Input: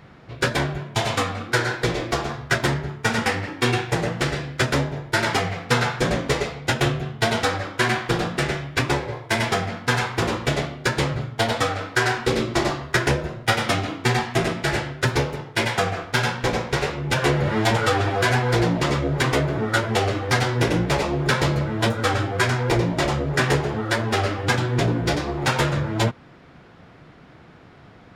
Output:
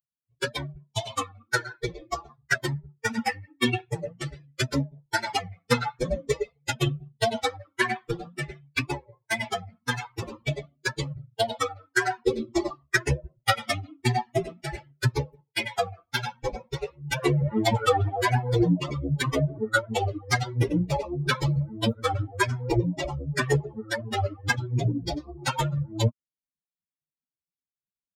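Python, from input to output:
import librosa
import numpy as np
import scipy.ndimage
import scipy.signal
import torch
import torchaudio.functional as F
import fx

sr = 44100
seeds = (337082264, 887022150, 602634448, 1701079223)

y = fx.bin_expand(x, sr, power=3.0)
y = y * librosa.db_to_amplitude(5.0)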